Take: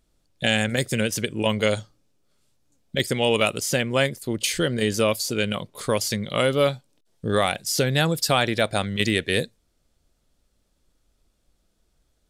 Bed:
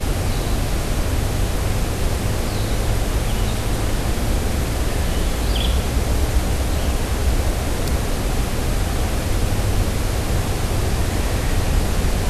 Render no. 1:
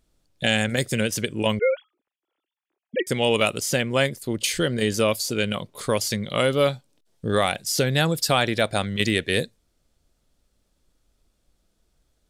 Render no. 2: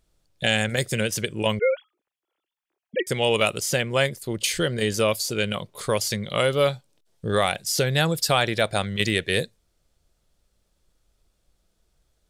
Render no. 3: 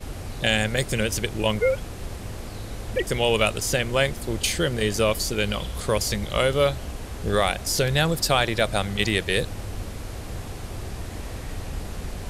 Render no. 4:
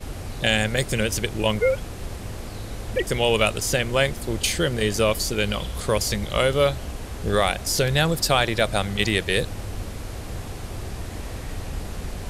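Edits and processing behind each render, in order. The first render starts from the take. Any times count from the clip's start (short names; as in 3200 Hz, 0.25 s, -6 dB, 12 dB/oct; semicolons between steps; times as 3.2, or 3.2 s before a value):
1.59–3.07 sine-wave speech
bell 260 Hz -7.5 dB 0.43 oct
add bed -13.5 dB
gain +1 dB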